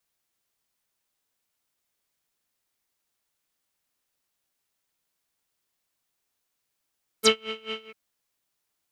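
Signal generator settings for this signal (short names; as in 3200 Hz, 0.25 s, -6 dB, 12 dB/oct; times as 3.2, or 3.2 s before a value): synth patch with tremolo A4, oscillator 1 square, sub -9 dB, noise -5 dB, filter lowpass, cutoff 2400 Hz, Q 8.8, filter envelope 2.5 oct, filter decay 0.05 s, filter sustain 10%, attack 30 ms, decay 0.10 s, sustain -16 dB, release 0.07 s, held 0.63 s, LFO 4.6 Hz, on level 23 dB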